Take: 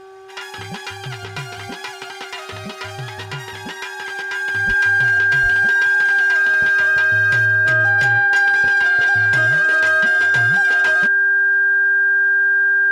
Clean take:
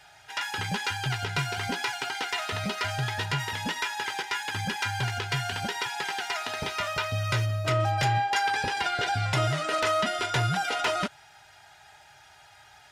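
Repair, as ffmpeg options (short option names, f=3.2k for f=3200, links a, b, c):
-filter_complex "[0:a]bandreject=f=383.7:t=h:w=4,bandreject=f=767.4:t=h:w=4,bandreject=f=1.1511k:t=h:w=4,bandreject=f=1.5348k:t=h:w=4,bandreject=f=1.6k:w=30,asplit=3[a][b][c];[a]afade=t=out:st=4.67:d=0.02[d];[b]highpass=f=140:w=0.5412,highpass=f=140:w=1.3066,afade=t=in:st=4.67:d=0.02,afade=t=out:st=4.79:d=0.02[e];[c]afade=t=in:st=4.79:d=0.02[f];[d][e][f]amix=inputs=3:normalize=0,asplit=3[g][h][i];[g]afade=t=out:st=5.42:d=0.02[j];[h]highpass=f=140:w=0.5412,highpass=f=140:w=1.3066,afade=t=in:st=5.42:d=0.02,afade=t=out:st=5.54:d=0.02[k];[i]afade=t=in:st=5.54:d=0.02[l];[j][k][l]amix=inputs=3:normalize=0"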